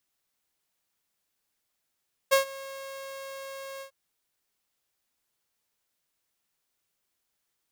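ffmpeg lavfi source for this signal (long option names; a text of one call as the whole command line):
ffmpeg -f lavfi -i "aevalsrc='0.2*(2*mod(543*t,1)-1)':duration=1.597:sample_rate=44100,afade=type=in:duration=0.02,afade=type=out:start_time=0.02:duration=0.116:silence=0.0841,afade=type=out:start_time=1.5:duration=0.097" out.wav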